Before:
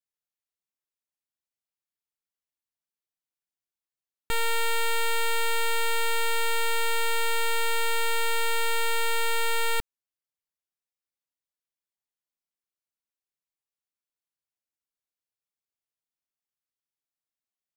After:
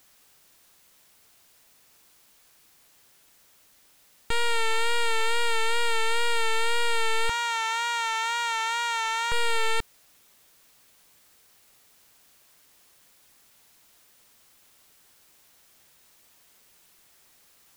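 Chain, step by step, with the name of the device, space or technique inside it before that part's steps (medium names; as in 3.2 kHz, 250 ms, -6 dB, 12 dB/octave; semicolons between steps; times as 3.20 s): 7.29–9.32 s: steep high-pass 820 Hz 36 dB/octave; compact cassette (saturation -28.5 dBFS, distortion -16 dB; low-pass 8.3 kHz 12 dB/octave; wow and flutter 47 cents; white noise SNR 31 dB); trim +7 dB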